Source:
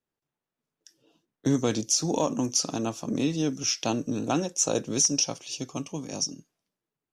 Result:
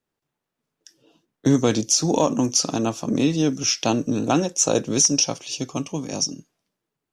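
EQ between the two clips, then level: high shelf 7900 Hz -4 dB; +6.5 dB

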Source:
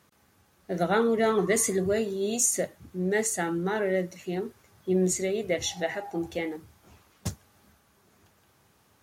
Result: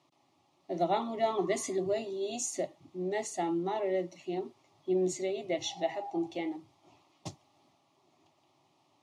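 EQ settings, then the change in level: BPF 200–4100 Hz; fixed phaser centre 310 Hz, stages 8; 0.0 dB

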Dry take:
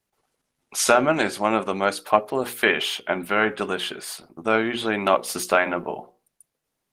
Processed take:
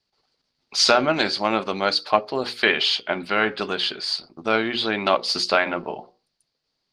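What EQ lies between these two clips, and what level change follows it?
synth low-pass 4600 Hz, resonance Q 7.2; -1.0 dB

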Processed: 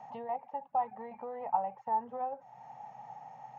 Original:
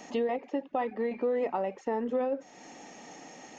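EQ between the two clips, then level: double band-pass 330 Hz, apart 2.7 oct; +8.5 dB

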